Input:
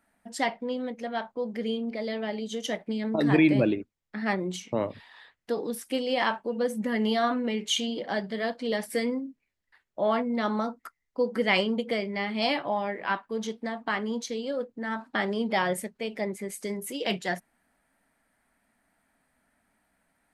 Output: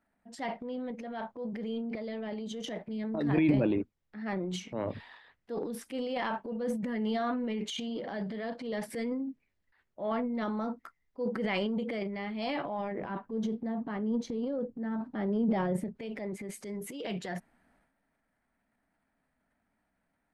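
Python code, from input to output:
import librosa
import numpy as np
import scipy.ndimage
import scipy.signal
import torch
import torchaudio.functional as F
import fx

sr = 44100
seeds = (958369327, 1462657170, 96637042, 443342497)

y = fx.tilt_shelf(x, sr, db=8.0, hz=710.0, at=(12.91, 15.96), fade=0.02)
y = fx.lowpass(y, sr, hz=3000.0, slope=6)
y = fx.low_shelf(y, sr, hz=410.0, db=4.5)
y = fx.transient(y, sr, attack_db=-5, sustain_db=10)
y = y * librosa.db_to_amplitude(-8.0)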